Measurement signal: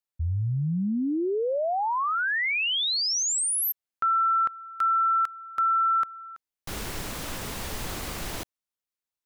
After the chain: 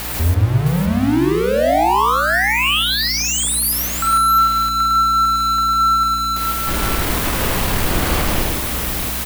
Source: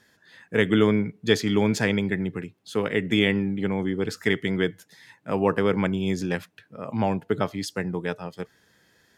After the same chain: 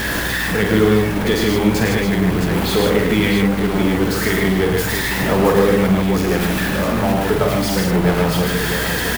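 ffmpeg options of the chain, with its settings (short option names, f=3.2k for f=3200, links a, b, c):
-filter_complex "[0:a]aeval=exprs='val(0)+0.5*0.112*sgn(val(0))':c=same,equalizer=f=6.3k:w=0.8:g=-6.5,asplit=2[a][b];[b]acompressor=threshold=-24dB:ratio=6,volume=-3dB[c];[a][c]amix=inputs=2:normalize=0,aphaser=in_gain=1:out_gain=1:delay=3.5:decay=0.23:speed=0.37:type=sinusoidal,aeval=exprs='val(0)+0.0355*(sin(2*PI*60*n/s)+sin(2*PI*2*60*n/s)/2+sin(2*PI*3*60*n/s)/3+sin(2*PI*4*60*n/s)/4+sin(2*PI*5*60*n/s)/5)':c=same,asplit=2[d][e];[e]aecho=0:1:47|106|151|663:0.531|0.562|0.631|0.473[f];[d][f]amix=inputs=2:normalize=0,volume=-2.5dB"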